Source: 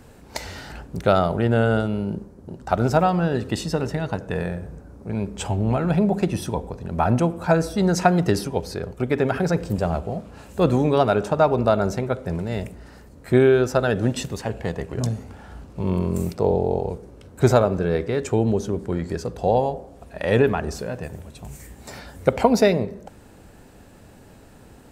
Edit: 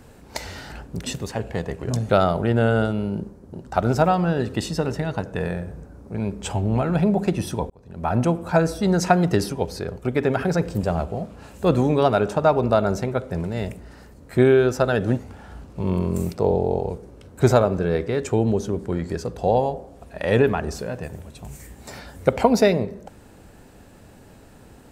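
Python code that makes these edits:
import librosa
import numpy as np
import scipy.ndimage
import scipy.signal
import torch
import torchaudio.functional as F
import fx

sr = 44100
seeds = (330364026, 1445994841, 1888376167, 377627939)

y = fx.edit(x, sr, fx.fade_in_span(start_s=6.65, length_s=0.56),
    fx.move(start_s=14.14, length_s=1.05, to_s=1.04), tone=tone)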